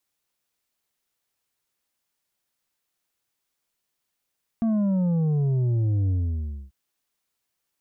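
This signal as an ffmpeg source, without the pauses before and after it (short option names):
-f lavfi -i "aevalsrc='0.0944*clip((2.09-t)/0.62,0,1)*tanh(2*sin(2*PI*230*2.09/log(65/230)*(exp(log(65/230)*t/2.09)-1)))/tanh(2)':d=2.09:s=44100"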